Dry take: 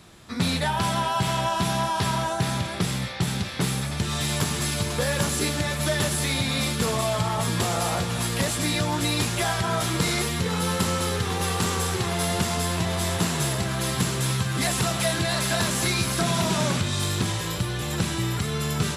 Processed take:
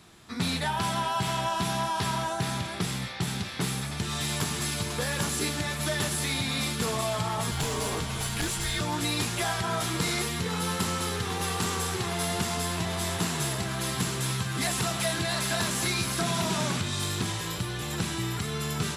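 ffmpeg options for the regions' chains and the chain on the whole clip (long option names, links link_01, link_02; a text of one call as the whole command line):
ffmpeg -i in.wav -filter_complex "[0:a]asettb=1/sr,asplit=3[link_01][link_02][link_03];[link_01]atrim=end=7.514[link_04];[link_02]atrim=start=7.51:end=8.81,asetpts=PTS-STARTPTS,afade=type=in:duration=0.004:curve=qsin,afade=type=out:start_time=1.296:duration=0.004:curve=qsin,aeval=exprs='clip(val(0),-1,0.1)':channel_layout=same,afreqshift=-250[link_05];[link_03]atrim=start=8.806[link_06];[link_04][link_05]acrossfade=duration=0.004:curve1=hsin:curve2=qsin[link_07];[link_07][link_06]acrossfade=duration=0.004:curve1=qsin:curve2=hsin,lowshelf=frequency=140:gain=-4.5,acontrast=50,equalizer=frequency=550:width_type=o:width=0.2:gain=-7.5,volume=-9dB" out.wav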